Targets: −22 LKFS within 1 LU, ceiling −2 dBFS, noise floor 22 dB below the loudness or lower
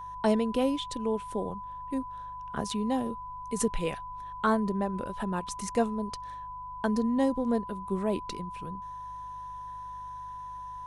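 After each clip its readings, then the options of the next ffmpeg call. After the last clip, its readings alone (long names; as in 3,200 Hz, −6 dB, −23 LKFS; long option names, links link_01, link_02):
mains hum 50 Hz; hum harmonics up to 150 Hz; level of the hum −51 dBFS; interfering tone 1,000 Hz; level of the tone −38 dBFS; integrated loudness −32.0 LKFS; sample peak −13.0 dBFS; target loudness −22.0 LKFS
→ -af "bandreject=frequency=50:width_type=h:width=4,bandreject=frequency=100:width_type=h:width=4,bandreject=frequency=150:width_type=h:width=4"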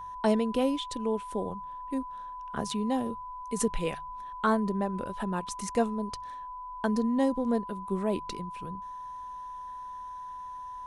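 mains hum none found; interfering tone 1,000 Hz; level of the tone −38 dBFS
→ -af "bandreject=frequency=1000:width=30"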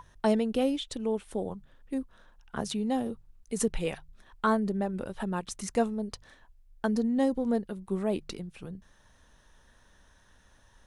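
interfering tone none found; integrated loudness −31.5 LKFS; sample peak −13.5 dBFS; target loudness −22.0 LKFS
→ -af "volume=9.5dB"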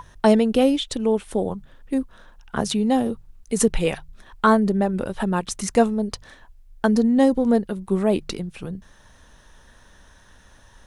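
integrated loudness −22.0 LKFS; sample peak −4.0 dBFS; background noise floor −52 dBFS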